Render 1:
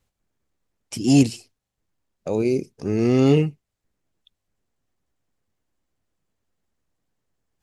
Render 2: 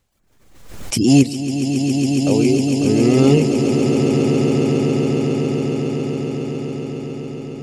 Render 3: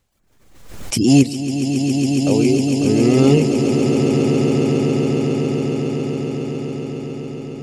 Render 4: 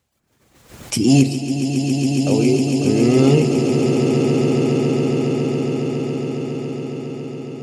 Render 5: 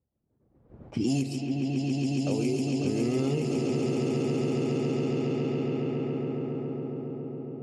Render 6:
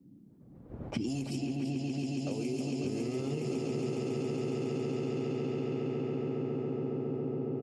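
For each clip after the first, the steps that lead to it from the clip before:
reverb removal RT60 0.57 s; echo with a slow build-up 138 ms, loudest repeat 8, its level -8.5 dB; swell ahead of each attack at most 59 dB/s; trim +4 dB
no audible change
high-pass 75 Hz; reverberation RT60 1.9 s, pre-delay 7 ms, DRR 9 dB; trim -1 dB
level-controlled noise filter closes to 490 Hz, open at -11.5 dBFS; compression, threshold -16 dBFS, peak gain reduction 8.5 dB; trim -7.5 dB
compression 12:1, threshold -37 dBFS, peak gain reduction 14.5 dB; feedback delay 337 ms, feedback 58%, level -9.5 dB; band noise 120–300 Hz -63 dBFS; trim +6 dB

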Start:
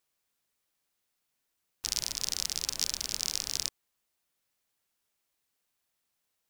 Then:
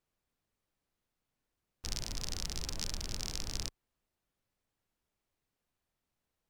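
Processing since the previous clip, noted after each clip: tilt EQ -3 dB/octave; trim -1.5 dB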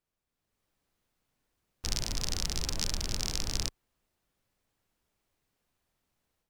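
level rider gain up to 9 dB; trim -3 dB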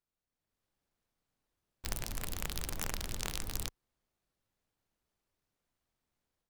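delay time shaken by noise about 2.4 kHz, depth 0.086 ms; trim -5.5 dB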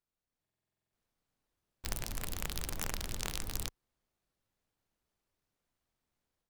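buffer glitch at 0.42 s, samples 2048, times 10

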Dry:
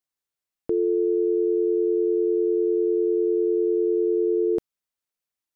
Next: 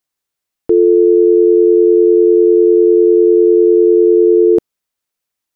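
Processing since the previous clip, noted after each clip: dynamic bell 370 Hz, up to +5 dB, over -33 dBFS, Q 0.77; trim +8.5 dB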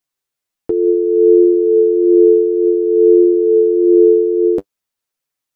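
flange 0.56 Hz, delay 6.9 ms, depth 3.9 ms, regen +28%; trim +2 dB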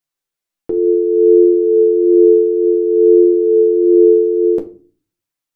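simulated room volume 250 m³, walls furnished, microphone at 0.77 m; trim -3 dB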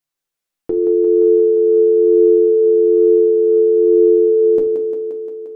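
compression, threshold -12 dBFS, peak gain reduction 7 dB; on a send: thinning echo 175 ms, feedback 75%, high-pass 160 Hz, level -6 dB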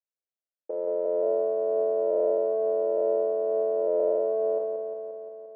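cycle switcher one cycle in 2, muted; Butterworth band-pass 550 Hz, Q 2.2; trim -7 dB

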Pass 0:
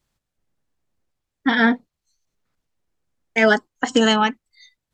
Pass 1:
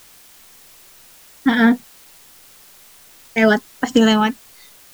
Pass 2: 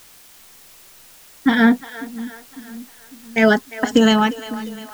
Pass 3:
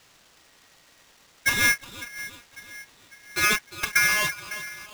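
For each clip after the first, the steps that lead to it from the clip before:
bass shelf 230 Hz +12 dB; in parallel at -6 dB: word length cut 6-bit, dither triangular; on the sum: trim -4.5 dB
two-band feedback delay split 380 Hz, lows 551 ms, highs 351 ms, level -15.5 dB
CVSD coder 32 kbps; polarity switched at an audio rate 1.9 kHz; trim -7 dB

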